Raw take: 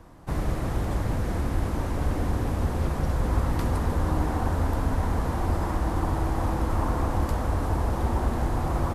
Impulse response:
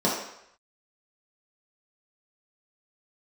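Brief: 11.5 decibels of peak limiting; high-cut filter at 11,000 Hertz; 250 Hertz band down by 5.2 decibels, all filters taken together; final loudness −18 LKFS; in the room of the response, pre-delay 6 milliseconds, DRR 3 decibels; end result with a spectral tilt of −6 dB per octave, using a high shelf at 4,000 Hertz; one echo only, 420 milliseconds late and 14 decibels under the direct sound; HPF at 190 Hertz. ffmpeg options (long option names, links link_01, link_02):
-filter_complex "[0:a]highpass=190,lowpass=11000,equalizer=frequency=250:width_type=o:gain=-5,highshelf=frequency=4000:gain=-5.5,alimiter=level_in=5dB:limit=-24dB:level=0:latency=1,volume=-5dB,aecho=1:1:420:0.2,asplit=2[link_01][link_02];[1:a]atrim=start_sample=2205,adelay=6[link_03];[link_02][link_03]afir=irnorm=-1:irlink=0,volume=-17.5dB[link_04];[link_01][link_04]amix=inputs=2:normalize=0,volume=16.5dB"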